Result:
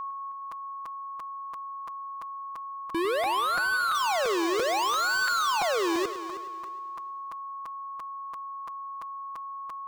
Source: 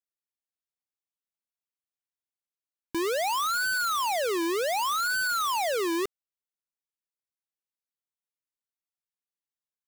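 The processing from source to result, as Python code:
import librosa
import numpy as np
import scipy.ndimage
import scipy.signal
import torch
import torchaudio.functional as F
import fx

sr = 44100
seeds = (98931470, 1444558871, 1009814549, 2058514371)

y = fx.lowpass(x, sr, hz=fx.steps((0.0, 4700.0), (3.95, 8400.0)), slope=12)
y = fx.power_curve(y, sr, exponent=3.0)
y = y + 10.0 ** (-35.0 / 20.0) * np.sin(2.0 * np.pi * 1100.0 * np.arange(len(y)) / sr)
y = fx.echo_heads(y, sr, ms=105, heads='first and third', feedback_pct=41, wet_db=-13.5)
y = fx.buffer_crackle(y, sr, first_s=0.51, period_s=0.34, block=256, kind='repeat')
y = y * librosa.db_to_amplitude(3.0)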